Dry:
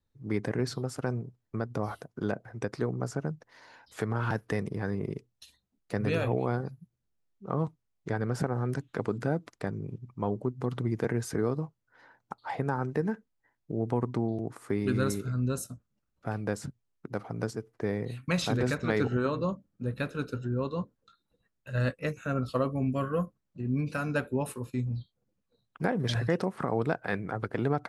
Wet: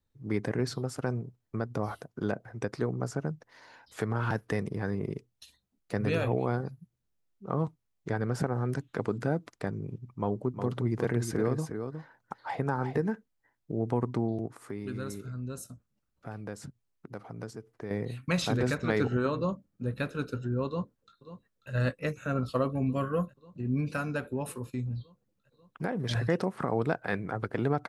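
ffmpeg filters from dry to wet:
ffmpeg -i in.wav -filter_complex "[0:a]asettb=1/sr,asplit=3[link_01][link_02][link_03];[link_01]atrim=end=10.094[link_04];[link_02]atrim=start=10.09:end=12.99,asetpts=PTS-STARTPTS,afade=type=in:duration=0.004:curve=qsin,afade=type=out:start_time=2.896:duration=0.004:curve=qsin,aecho=1:1:361:0.422,atrim=end_sample=127890[link_05];[link_03]atrim=start=12.986[link_06];[link_04][link_05]acrossfade=duration=0.004:curve1=hsin:curve2=qsin[link_07];[link_07][link_06]acrossfade=duration=0.004:curve1=qsin:curve2=hsin,asettb=1/sr,asplit=3[link_08][link_09][link_10];[link_08]atrim=end=14.464[link_11];[link_09]atrim=start=14.46:end=17.91,asetpts=PTS-STARTPTS,afade=type=in:duration=0.004:curve=qsin,afade=type=out:start_time=3.446:duration=0.004:curve=qsin,acompressor=threshold=-48dB:ratio=1.5:attack=3.2:release=140:knee=1:detection=peak[link_12];[link_10]atrim=start=17.906[link_13];[link_11][link_12]acrossfade=duration=0.004:curve1=hsin:curve2=qsin[link_14];[link_14][link_13]acrossfade=duration=0.004:curve1=qsin:curve2=hsin,asplit=2[link_15][link_16];[link_16]afade=type=in:start_time=20.67:duration=0.01,afade=type=out:start_time=21.71:duration=0.01,aecho=0:1:540|1080|1620|2160|2700|3240|3780|4320|4860|5400|5940|6480:0.211349|0.169079|0.135263|0.108211|0.0865685|0.0692548|0.0554038|0.0443231|0.0354585|0.0283668|0.0226934|0.0181547[link_17];[link_15][link_17]amix=inputs=2:normalize=0,asettb=1/sr,asplit=3[link_18][link_19][link_20];[link_18]atrim=end=24.014[link_21];[link_19]atrim=start=24.01:end=26.11,asetpts=PTS-STARTPTS,afade=type=in:duration=0.004:curve=qsin,afade=type=out:start_time=2.096:duration=0.004:curve=qsin,acompressor=threshold=-33dB:ratio=1.5:attack=3.2:release=140:knee=1:detection=peak[link_22];[link_20]atrim=start=26.106[link_23];[link_21][link_22]acrossfade=duration=0.004:curve1=hsin:curve2=qsin[link_24];[link_24][link_23]acrossfade=duration=0.004:curve1=qsin:curve2=hsin" out.wav

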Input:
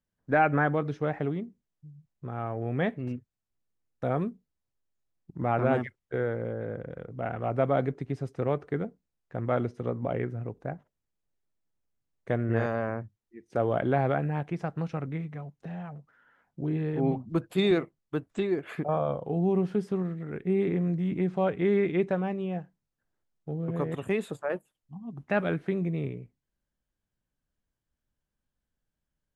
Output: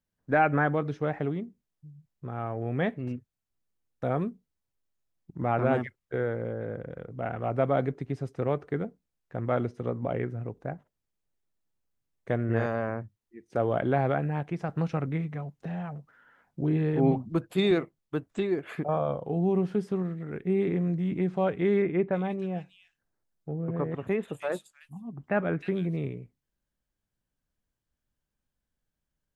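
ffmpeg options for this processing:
ffmpeg -i in.wav -filter_complex "[0:a]asettb=1/sr,asplit=3[link_01][link_02][link_03];[link_01]atrim=end=21.824[link_04];[link_02]atrim=start=21.82:end=25.97,asetpts=PTS-STARTPTS,afade=type=in:duration=0.004:curve=qsin,afade=type=out:start_time=4.146:duration=0.004:curve=qsin,acrossover=split=2700[link_05][link_06];[link_06]adelay=310[link_07];[link_05][link_07]amix=inputs=2:normalize=0,atrim=end_sample=183015[link_08];[link_03]atrim=start=25.966[link_09];[link_04][link_08]acrossfade=duration=0.004:curve1=hsin:curve2=qsin[link_10];[link_10][link_09]acrossfade=duration=0.004:curve1=qsin:curve2=hsin,asplit=3[link_11][link_12][link_13];[link_11]atrim=end=14.692[link_14];[link_12]atrim=start=14.688:end=17.282,asetpts=PTS-STARTPTS,volume=3.5dB[link_15];[link_13]atrim=start=17.278[link_16];[link_14][link_15]acrossfade=duration=0.004:curve1=hsin:curve2=hsin[link_17];[link_17][link_16]acrossfade=duration=0.004:curve1=hsin:curve2=hsin" out.wav

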